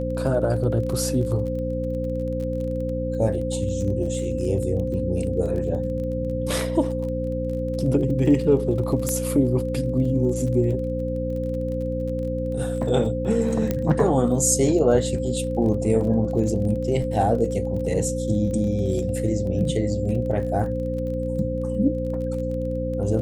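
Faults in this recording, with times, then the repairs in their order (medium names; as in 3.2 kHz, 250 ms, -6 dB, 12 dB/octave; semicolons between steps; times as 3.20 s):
crackle 25 per s -32 dBFS
hum 60 Hz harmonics 5 -28 dBFS
whine 520 Hz -27 dBFS
9.09 s: pop -11 dBFS
13.71 s: pop -10 dBFS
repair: de-click; de-hum 60 Hz, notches 5; band-stop 520 Hz, Q 30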